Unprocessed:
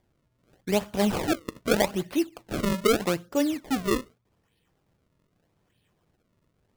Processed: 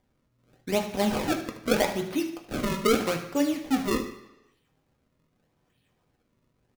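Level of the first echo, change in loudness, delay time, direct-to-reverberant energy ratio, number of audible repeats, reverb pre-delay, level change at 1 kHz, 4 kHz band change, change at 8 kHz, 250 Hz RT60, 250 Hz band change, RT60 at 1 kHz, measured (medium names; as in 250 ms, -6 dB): -13.0 dB, -0.5 dB, 75 ms, 2.5 dB, 1, 3 ms, +0.5 dB, -0.5 dB, -1.0 dB, 0.80 s, -0.5 dB, 0.90 s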